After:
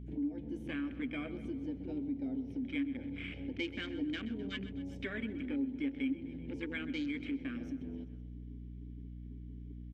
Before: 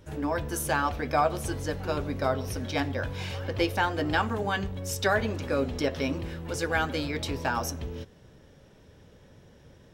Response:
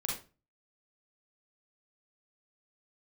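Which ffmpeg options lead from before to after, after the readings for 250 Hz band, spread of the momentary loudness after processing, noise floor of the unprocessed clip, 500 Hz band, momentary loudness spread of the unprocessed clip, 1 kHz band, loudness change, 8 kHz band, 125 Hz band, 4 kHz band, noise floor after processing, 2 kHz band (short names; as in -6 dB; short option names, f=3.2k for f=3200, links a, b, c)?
-2.5 dB, 12 LU, -55 dBFS, -17.5 dB, 8 LU, -27.5 dB, -10.5 dB, under -30 dB, -13.5 dB, -11.5 dB, -47 dBFS, -13.0 dB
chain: -filter_complex "[0:a]asplit=3[a][b][c];[a]bandpass=f=270:t=q:w=8,volume=0dB[d];[b]bandpass=f=2.29k:t=q:w=8,volume=-6dB[e];[c]bandpass=f=3.01k:t=q:w=8,volume=-9dB[f];[d][e][f]amix=inputs=3:normalize=0,asplit=2[g][h];[h]asoftclip=type=tanh:threshold=-39.5dB,volume=-11dB[i];[g][i]amix=inputs=2:normalize=0,afwtdn=0.00355,asplit=2[j][k];[k]aecho=0:1:128|256|384|512|640:0.15|0.0793|0.042|0.0223|0.0118[l];[j][l]amix=inputs=2:normalize=0,aeval=exprs='val(0)+0.002*(sin(2*PI*60*n/s)+sin(2*PI*2*60*n/s)/2+sin(2*PI*3*60*n/s)/3+sin(2*PI*4*60*n/s)/4+sin(2*PI*5*60*n/s)/5)':c=same,acompressor=threshold=-51dB:ratio=2,volume=9.5dB"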